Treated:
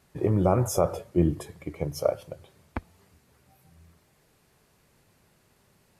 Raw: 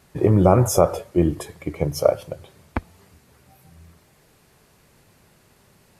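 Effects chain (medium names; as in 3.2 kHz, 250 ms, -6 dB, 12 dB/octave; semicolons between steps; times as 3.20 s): 0.84–1.64 s: peaking EQ 140 Hz +6 dB 2.3 oct; trim -7.5 dB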